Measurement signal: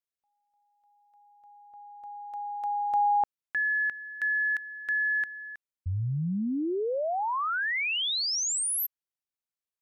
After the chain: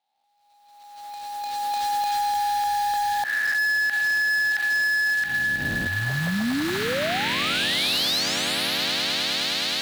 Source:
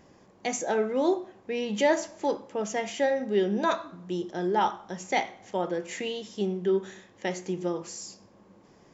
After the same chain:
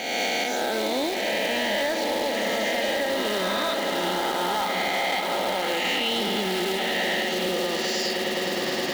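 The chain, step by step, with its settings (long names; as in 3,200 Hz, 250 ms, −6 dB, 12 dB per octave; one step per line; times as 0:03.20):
peak hold with a rise ahead of every peak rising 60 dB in 2.31 s
camcorder AGC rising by 21 dB per second, up to +22 dB
three-way crossover with the lows and the highs turned down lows −21 dB, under 200 Hz, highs −21 dB, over 4,100 Hz
on a send: echo that builds up and dies away 104 ms, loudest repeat 8, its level −15 dB
on the sum: floating-point word with a short mantissa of 2 bits
in parallel at +0.5 dB: brickwall limiter −18.5 dBFS
on the sum: graphic EQ with 15 bands 160 Hz −3 dB, 400 Hz −9 dB, 1,000 Hz −7 dB, 4,000 Hz +11 dB
gain into a clipping stage and back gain 14.5 dB
downward compressor, threshold −22 dBFS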